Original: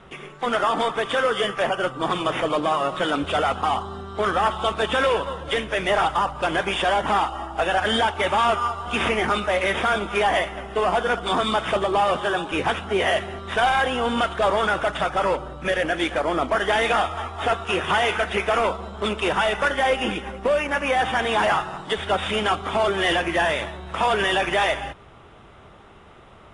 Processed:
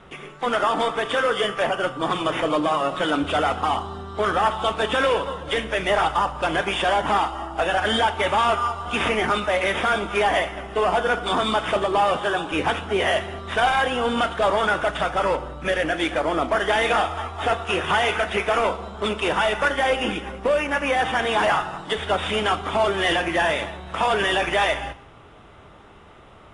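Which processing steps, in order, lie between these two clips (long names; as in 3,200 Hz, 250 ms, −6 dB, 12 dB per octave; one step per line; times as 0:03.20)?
feedback delay network reverb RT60 0.66 s, high-frequency decay 0.95×, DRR 12 dB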